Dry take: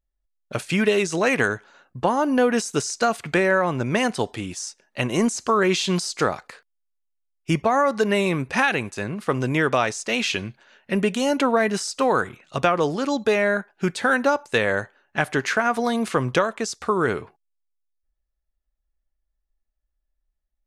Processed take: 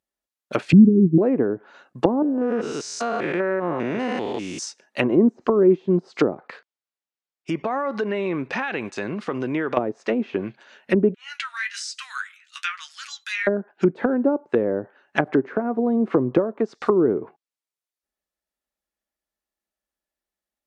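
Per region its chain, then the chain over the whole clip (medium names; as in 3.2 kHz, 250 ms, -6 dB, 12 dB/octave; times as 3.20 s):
0.72–1.18 s: inverse Chebyshev low-pass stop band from 590 Hz + tilt EQ -4.5 dB/octave + three bands compressed up and down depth 40%
2.22–4.63 s: spectrogram pixelated in time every 200 ms + compression, threshold -24 dBFS
6.36–9.77 s: distance through air 67 m + compression 5:1, threshold -26 dBFS
11.14–13.47 s: steep high-pass 1.5 kHz + flange 1.1 Hz, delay 6.5 ms, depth 6.1 ms, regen +46%
whole clip: dynamic bell 330 Hz, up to +6 dB, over -36 dBFS, Q 1.8; high-pass 200 Hz 12 dB/octave; low-pass that closes with the level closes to 420 Hz, closed at -18.5 dBFS; trim +4 dB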